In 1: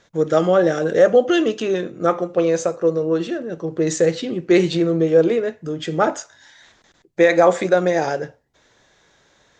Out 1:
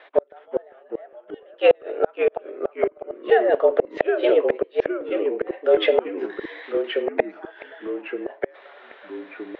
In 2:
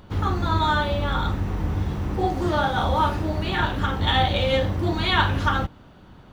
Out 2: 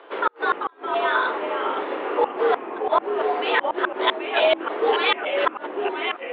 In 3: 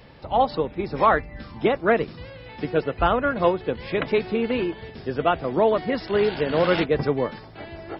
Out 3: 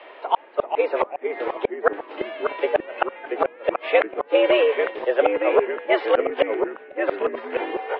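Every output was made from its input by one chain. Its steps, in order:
mistuned SSB +110 Hz 290–3100 Hz; inverted gate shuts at -14 dBFS, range -41 dB; ever faster or slower copies 360 ms, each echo -2 st, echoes 3, each echo -6 dB; normalise loudness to -23 LUFS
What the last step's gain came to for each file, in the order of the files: +10.5 dB, +6.5 dB, +8.5 dB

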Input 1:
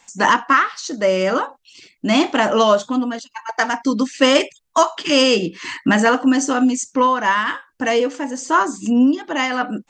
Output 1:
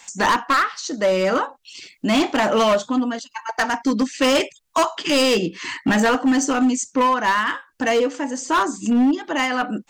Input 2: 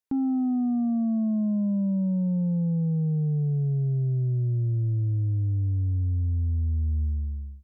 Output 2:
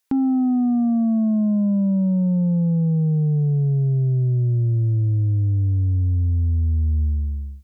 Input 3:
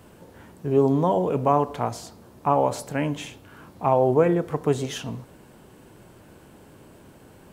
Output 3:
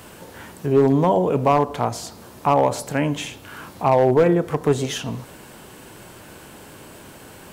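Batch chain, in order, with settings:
hard clipper -12.5 dBFS; tape noise reduction on one side only encoder only; normalise loudness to -20 LUFS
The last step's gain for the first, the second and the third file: -0.5 dB, +6.0 dB, +4.0 dB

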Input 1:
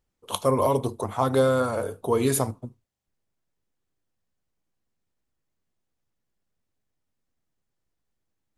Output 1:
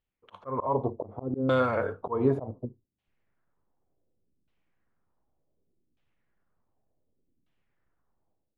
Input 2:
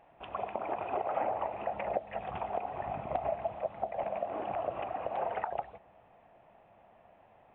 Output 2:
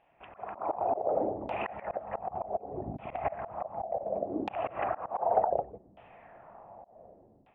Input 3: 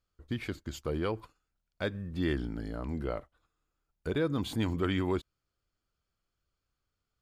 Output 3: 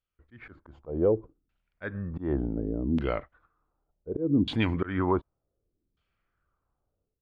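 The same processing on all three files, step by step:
level rider gain up to 14 dB; LFO low-pass saw down 0.67 Hz 260–3200 Hz; slow attack 183 ms; peak normalisation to -12 dBFS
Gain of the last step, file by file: -10.0 dB, -8.0 dB, -9.0 dB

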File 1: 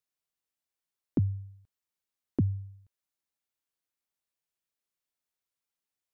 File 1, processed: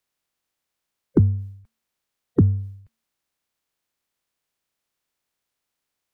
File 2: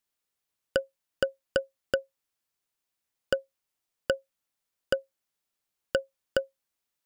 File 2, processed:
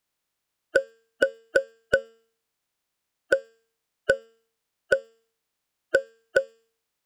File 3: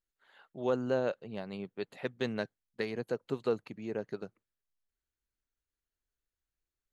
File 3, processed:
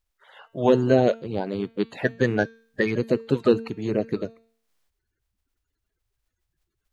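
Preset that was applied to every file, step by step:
coarse spectral quantiser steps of 30 dB; treble shelf 5.8 kHz -5 dB; de-hum 226.8 Hz, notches 38; peak normalisation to -6 dBFS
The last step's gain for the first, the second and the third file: +11.5 dB, +6.5 dB, +13.0 dB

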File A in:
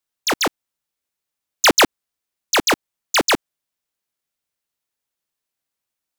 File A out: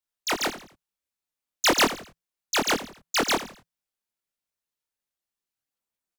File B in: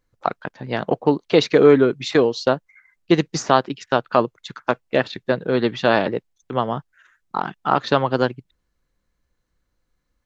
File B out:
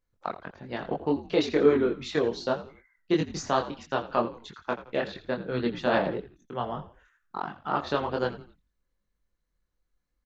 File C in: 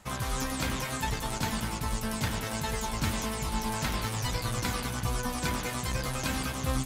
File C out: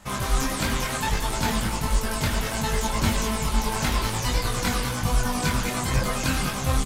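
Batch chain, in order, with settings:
frequency-shifting echo 84 ms, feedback 35%, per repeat -58 Hz, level -14 dB; chorus voices 6, 1.4 Hz, delay 23 ms, depth 3 ms; peak normalisation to -9 dBFS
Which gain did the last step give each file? -4.0 dB, -6.5 dB, +9.0 dB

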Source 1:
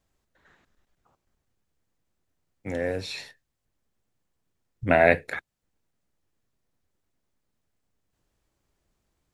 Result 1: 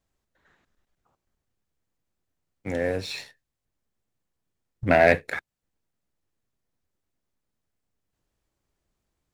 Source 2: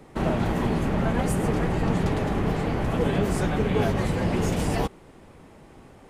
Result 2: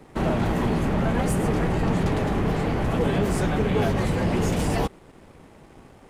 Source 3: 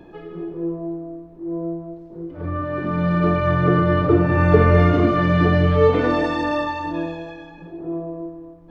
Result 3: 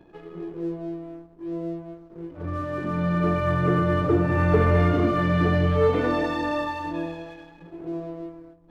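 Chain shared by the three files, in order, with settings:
waveshaping leveller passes 1; normalise loudness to -24 LUFS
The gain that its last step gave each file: -1.5 dB, -1.5 dB, -8.0 dB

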